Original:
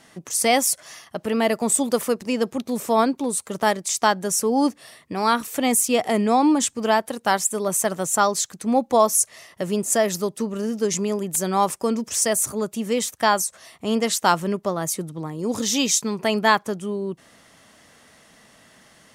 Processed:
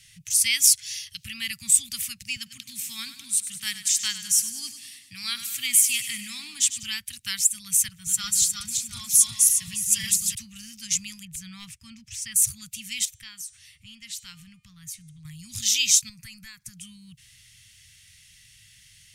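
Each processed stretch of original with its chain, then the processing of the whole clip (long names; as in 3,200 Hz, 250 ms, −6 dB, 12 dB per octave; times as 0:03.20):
0:00.64–0:01.24: parametric band 4,600 Hz +6.5 dB 1.5 octaves + multiband upward and downward compressor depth 40%
0:02.36–0:06.83: high-pass filter 170 Hz + repeating echo 99 ms, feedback 59%, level −12 dB
0:07.88–0:10.35: feedback delay that plays each chunk backwards 179 ms, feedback 62%, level −1 dB + notch comb filter 260 Hz + multiband upward and downward expander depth 40%
0:11.25–0:12.36: low-pass filter 1,300 Hz 6 dB per octave + hard clipping −12 dBFS
0:13.05–0:15.25: high-shelf EQ 2,900 Hz −9.5 dB + hum removal 303.9 Hz, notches 31 + downward compressor 1.5 to 1, threshold −43 dBFS
0:16.09–0:16.77: parametric band 3,100 Hz −14 dB 0.59 octaves + downward compressor 8 to 1, threshold −26 dBFS
whole clip: Chebyshev band-stop filter 110–2,400 Hz, order 3; bass and treble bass +4 dB, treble +1 dB; level +2.5 dB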